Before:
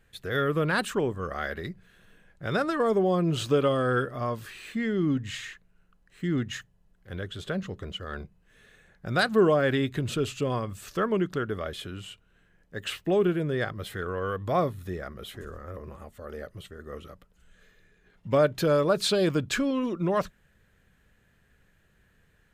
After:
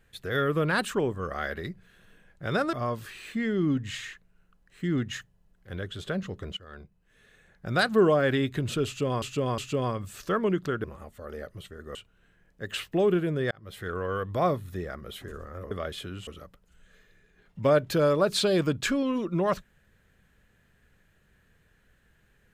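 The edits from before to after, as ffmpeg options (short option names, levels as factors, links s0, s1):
-filter_complex "[0:a]asplit=10[s0][s1][s2][s3][s4][s5][s6][s7][s8][s9];[s0]atrim=end=2.732[s10];[s1]atrim=start=4.128:end=7.97,asetpts=PTS-STARTPTS,afade=t=out:st=3.838:d=0.004:c=hsin:silence=0.237137[s11];[s2]atrim=start=7.97:end=10.622,asetpts=PTS-STARTPTS,afade=t=in:d=1.09:silence=0.237137[s12];[s3]atrim=start=10.258:end=10.622[s13];[s4]atrim=start=10.258:end=11.522[s14];[s5]atrim=start=15.838:end=16.952[s15];[s6]atrim=start=12.078:end=13.64,asetpts=PTS-STARTPTS,afade=t=out:st=1.558:d=0.004:c=hsin[s16];[s7]atrim=start=13.64:end=15.842,asetpts=PTS-STARTPTS,afade=t=in:d=0.41[s17];[s8]atrim=start=11.518:end=12.082[s18];[s9]atrim=start=16.948[s19];[s11][s12]concat=n=2:v=0:a=1[s20];[s10][s20]acrossfade=d=0.004:c1=hsin:c2=hsin[s21];[s21][s13]acrossfade=d=0.004:c1=hsin:c2=hsin[s22];[s22][s14]acrossfade=d=0.004:c1=hsin:c2=hsin[s23];[s23][s15]acrossfade=d=0.004:c1=hsin:c2=hsin[s24];[s16][s17]concat=n=2:v=0:a=1[s25];[s24][s25]acrossfade=d=0.004:c1=hsin:c2=hsin[s26];[s26][s18]acrossfade=d=0.004:c1=hsin:c2=hsin[s27];[s27][s19]acrossfade=d=0.004:c1=hsin:c2=hsin"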